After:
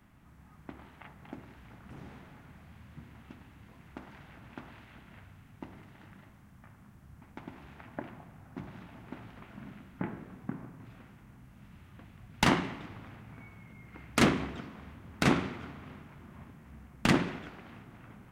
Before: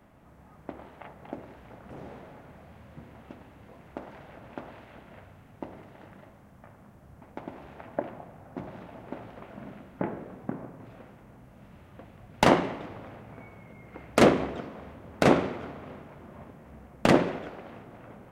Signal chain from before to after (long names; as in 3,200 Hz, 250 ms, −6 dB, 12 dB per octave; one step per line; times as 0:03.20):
parametric band 550 Hz −14 dB 1.3 octaves